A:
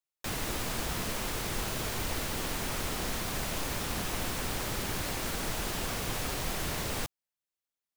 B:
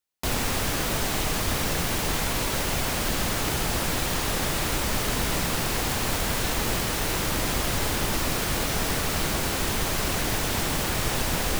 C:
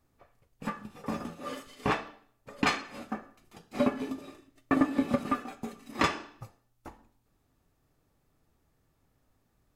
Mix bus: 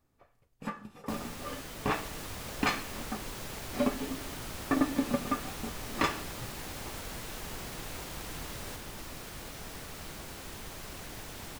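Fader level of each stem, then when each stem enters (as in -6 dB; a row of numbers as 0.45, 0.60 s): -10.5, -17.5, -2.5 dB; 1.70, 0.85, 0.00 s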